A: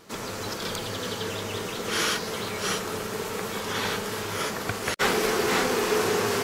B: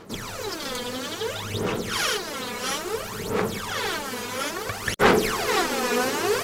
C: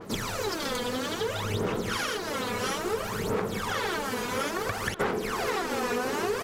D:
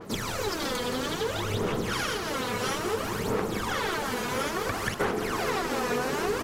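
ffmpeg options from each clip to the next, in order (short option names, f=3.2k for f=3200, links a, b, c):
-af "aphaser=in_gain=1:out_gain=1:delay=4.1:decay=0.74:speed=0.59:type=sinusoidal,volume=-2.5dB"
-filter_complex "[0:a]acompressor=threshold=-27dB:ratio=16,asplit=2[a][b];[b]adelay=1050,volume=-11dB,highshelf=f=4k:g=-23.6[c];[a][c]amix=inputs=2:normalize=0,adynamicequalizer=threshold=0.00501:dfrequency=2200:dqfactor=0.7:tfrequency=2200:tqfactor=0.7:attack=5:release=100:ratio=0.375:range=2.5:mode=cutabove:tftype=highshelf,volume=2.5dB"
-filter_complex "[0:a]asplit=8[a][b][c][d][e][f][g][h];[b]adelay=172,afreqshift=-97,volume=-9dB[i];[c]adelay=344,afreqshift=-194,volume=-13.9dB[j];[d]adelay=516,afreqshift=-291,volume=-18.8dB[k];[e]adelay=688,afreqshift=-388,volume=-23.6dB[l];[f]adelay=860,afreqshift=-485,volume=-28.5dB[m];[g]adelay=1032,afreqshift=-582,volume=-33.4dB[n];[h]adelay=1204,afreqshift=-679,volume=-38.3dB[o];[a][i][j][k][l][m][n][o]amix=inputs=8:normalize=0"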